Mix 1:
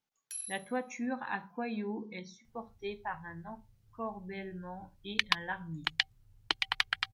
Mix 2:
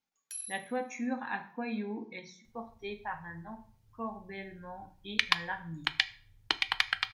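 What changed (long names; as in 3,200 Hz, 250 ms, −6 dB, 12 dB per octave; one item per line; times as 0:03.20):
speech −3.5 dB
reverb: on, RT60 0.50 s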